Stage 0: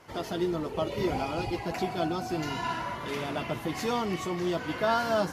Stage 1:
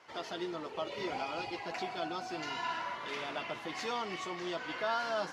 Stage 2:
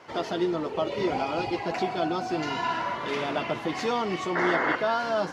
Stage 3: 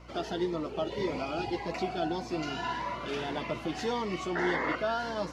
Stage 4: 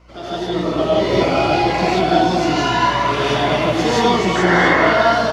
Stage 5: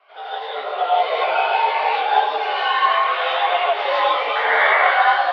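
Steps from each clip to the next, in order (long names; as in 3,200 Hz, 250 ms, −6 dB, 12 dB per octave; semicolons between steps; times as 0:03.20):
high-pass filter 900 Hz 6 dB per octave; in parallel at +0.5 dB: brickwall limiter −25.5 dBFS, peak gain reduction 8 dB; on the sum: low-pass filter 5,500 Hz 12 dB per octave; level −7.5 dB
tilt shelving filter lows +5 dB, about 720 Hz; in parallel at +1 dB: speech leveller; on the sum: sound drawn into the spectrogram noise, 0:04.35–0:04.76, 240–2,200 Hz −29 dBFS; level +3 dB
mains hum 60 Hz, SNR 21 dB; phaser whose notches keep moving one way rising 1.7 Hz; level −3 dB
automatic gain control gain up to 9 dB; single-tap delay 251 ms −9 dB; reverb whose tail is shaped and stops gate 200 ms rising, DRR −7.5 dB
multi-voice chorus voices 2, 0.85 Hz, delay 16 ms, depth 4.8 ms; single-sideband voice off tune +92 Hz 480–3,600 Hz; level +2.5 dB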